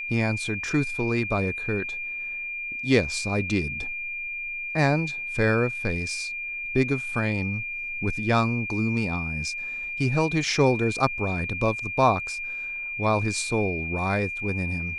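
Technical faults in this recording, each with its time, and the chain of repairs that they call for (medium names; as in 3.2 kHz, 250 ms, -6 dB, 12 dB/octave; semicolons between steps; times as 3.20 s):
whine 2.4 kHz -30 dBFS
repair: band-stop 2.4 kHz, Q 30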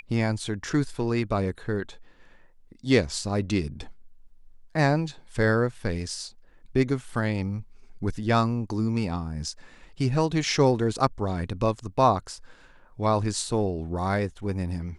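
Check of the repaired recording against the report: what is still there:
nothing left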